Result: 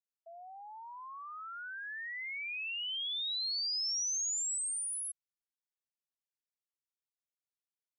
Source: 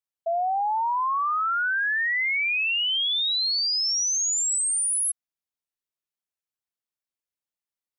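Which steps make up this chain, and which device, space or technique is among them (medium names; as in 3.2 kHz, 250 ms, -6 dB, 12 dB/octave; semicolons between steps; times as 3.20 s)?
piezo pickup straight into a mixer (low-pass 6.4 kHz; differentiator); trim -5.5 dB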